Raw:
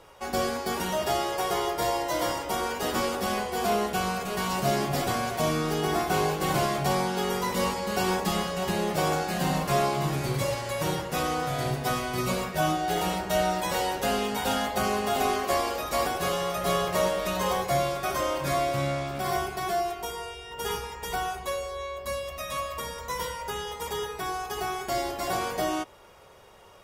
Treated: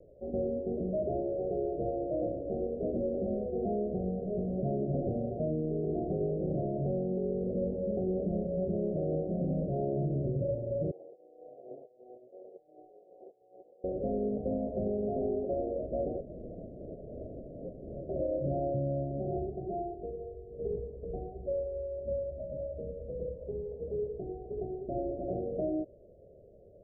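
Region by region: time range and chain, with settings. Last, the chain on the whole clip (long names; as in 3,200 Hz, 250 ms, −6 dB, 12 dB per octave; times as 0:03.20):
0:10.91–0:13.84: lower of the sound and its delayed copy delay 2.4 ms + high-pass filter 1,000 Hz + compressor whose output falls as the input rises −38 dBFS, ratio −0.5
0:16.20–0:18.09: parametric band 8,100 Hz −2 dB 1.4 octaves + wrap-around overflow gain 28.5 dB
whole clip: Butterworth low-pass 650 Hz 96 dB per octave; brickwall limiter −24 dBFS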